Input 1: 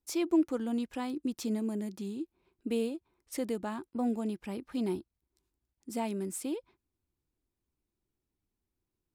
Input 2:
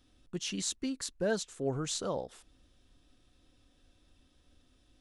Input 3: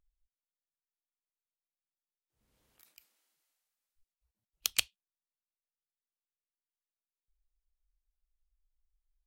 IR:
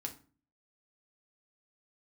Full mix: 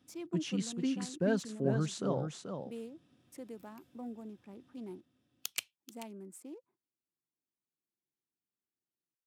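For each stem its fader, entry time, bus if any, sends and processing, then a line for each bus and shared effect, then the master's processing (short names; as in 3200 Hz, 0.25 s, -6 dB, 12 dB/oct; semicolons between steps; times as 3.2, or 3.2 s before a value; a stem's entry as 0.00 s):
-12.5 dB, 0.00 s, no send, no echo send, Wiener smoothing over 15 samples
-2.0 dB, 0.00 s, no send, echo send -6.5 dB, tone controls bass +10 dB, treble -7 dB
-7.0 dB, 0.80 s, no send, echo send -16 dB, wow and flutter 100 cents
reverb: off
echo: echo 0.434 s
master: HPF 130 Hz 24 dB/oct; bell 4000 Hz -3 dB 0.39 oct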